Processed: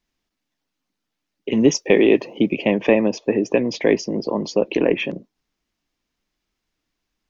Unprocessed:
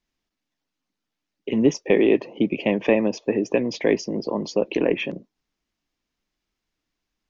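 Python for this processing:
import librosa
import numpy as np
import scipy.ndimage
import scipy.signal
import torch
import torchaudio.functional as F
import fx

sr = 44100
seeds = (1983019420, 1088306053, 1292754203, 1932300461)

y = fx.high_shelf(x, sr, hz=fx.line((1.51, 4000.0), (2.56, 5900.0)), db=11.0, at=(1.51, 2.56), fade=0.02)
y = y * librosa.db_to_amplitude(3.0)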